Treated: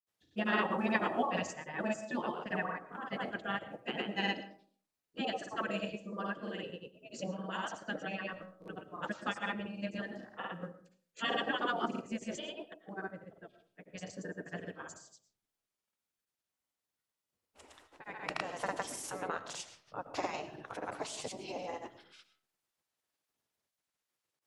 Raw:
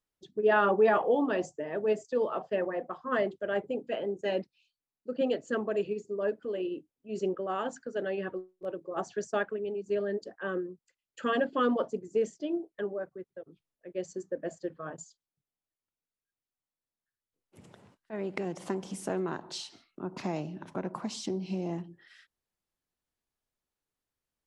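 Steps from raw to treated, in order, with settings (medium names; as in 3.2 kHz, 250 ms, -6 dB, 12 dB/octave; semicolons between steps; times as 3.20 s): spectral gate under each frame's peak -10 dB weak; de-hum 63.32 Hz, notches 2; granulator 100 ms, grains 20 per s, pitch spread up and down by 0 st; on a send: reverberation RT60 0.45 s, pre-delay 70 ms, DRR 13 dB; on the sum: trim +5.5 dB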